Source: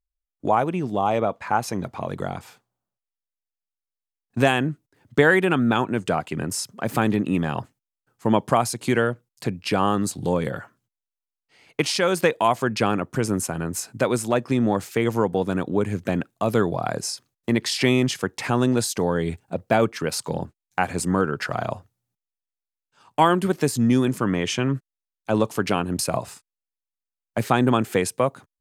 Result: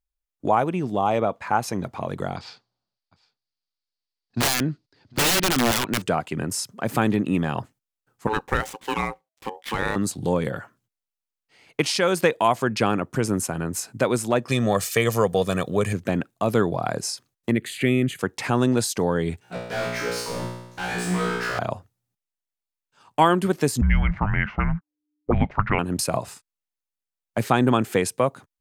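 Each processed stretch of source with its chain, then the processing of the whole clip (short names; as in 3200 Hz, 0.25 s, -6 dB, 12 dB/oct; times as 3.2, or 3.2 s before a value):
2.36–6.02 synth low-pass 4600 Hz, resonance Q 5.7 + wrapped overs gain 15 dB + echo 0.754 s -23.5 dB
8.27–9.96 median filter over 9 samples + tilt shelf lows -4 dB, about 1300 Hz + ring modulator 650 Hz
14.48–15.93 high shelf 2500 Hz +11 dB + comb 1.7 ms, depth 56%
17.51–18.19 bell 3200 Hz -4.5 dB 1 oct + fixed phaser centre 2300 Hz, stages 4
19.41–21.59 bell 760 Hz -7.5 dB 0.99 oct + overdrive pedal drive 37 dB, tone 3700 Hz, clips at -7 dBFS + resonator 60 Hz, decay 0.9 s, mix 100%
23.81–25.79 frequency shift -300 Hz + air absorption 120 m + envelope low-pass 260–2100 Hz up, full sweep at -19 dBFS
whole clip: dry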